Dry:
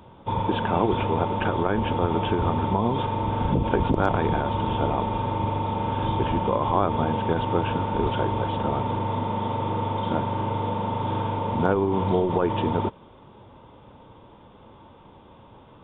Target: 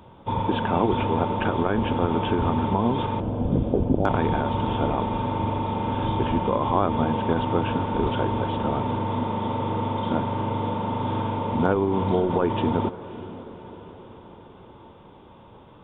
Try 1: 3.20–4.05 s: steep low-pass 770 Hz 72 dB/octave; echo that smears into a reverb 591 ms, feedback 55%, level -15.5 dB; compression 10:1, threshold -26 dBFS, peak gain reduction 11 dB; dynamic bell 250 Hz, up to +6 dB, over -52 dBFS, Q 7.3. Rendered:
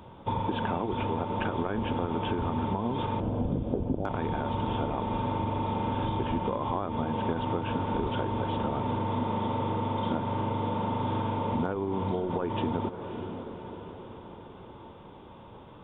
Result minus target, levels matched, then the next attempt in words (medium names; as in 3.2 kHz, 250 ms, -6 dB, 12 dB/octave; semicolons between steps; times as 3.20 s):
compression: peak gain reduction +11 dB
3.20–4.05 s: steep low-pass 770 Hz 72 dB/octave; echo that smears into a reverb 591 ms, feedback 55%, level -15.5 dB; dynamic bell 250 Hz, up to +6 dB, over -52 dBFS, Q 7.3